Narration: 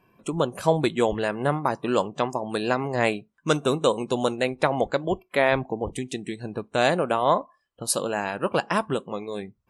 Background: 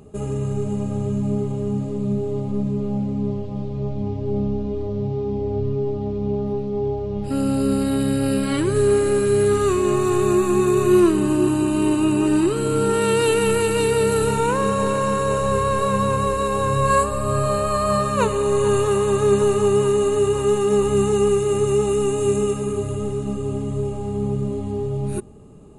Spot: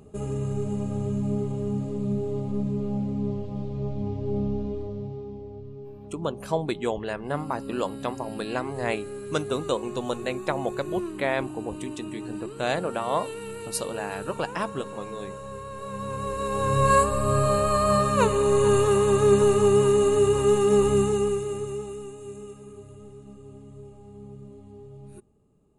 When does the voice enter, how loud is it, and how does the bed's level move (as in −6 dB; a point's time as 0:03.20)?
5.85 s, −5.5 dB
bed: 0:04.64 −4.5 dB
0:05.63 −18 dB
0:15.71 −18 dB
0:16.82 −1.5 dB
0:20.88 −1.5 dB
0:22.19 −20 dB